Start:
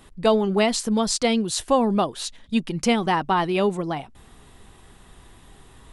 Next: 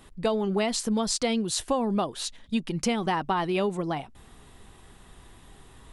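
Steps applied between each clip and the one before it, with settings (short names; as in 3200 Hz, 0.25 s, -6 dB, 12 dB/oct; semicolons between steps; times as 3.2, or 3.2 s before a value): compressor, threshold -20 dBFS, peak gain reduction 7 dB; gain -2 dB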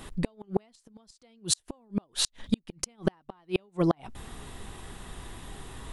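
flipped gate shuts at -19 dBFS, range -41 dB; gain +8 dB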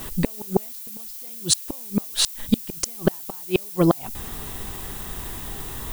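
added noise violet -44 dBFS; gain +7 dB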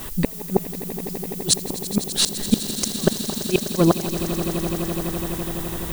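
swelling echo 84 ms, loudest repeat 8, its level -15 dB; gain +1 dB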